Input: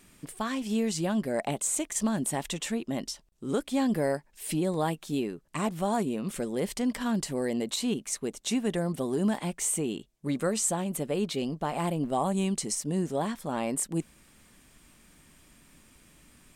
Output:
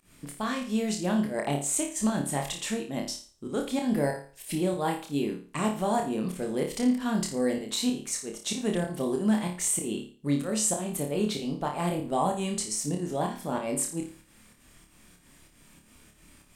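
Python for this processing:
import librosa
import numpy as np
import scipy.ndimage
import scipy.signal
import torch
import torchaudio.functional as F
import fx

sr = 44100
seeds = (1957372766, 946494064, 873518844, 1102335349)

y = fx.volume_shaper(x, sr, bpm=95, per_beat=2, depth_db=-21, release_ms=161.0, shape='fast start')
y = fx.room_flutter(y, sr, wall_m=4.8, rt60_s=0.4)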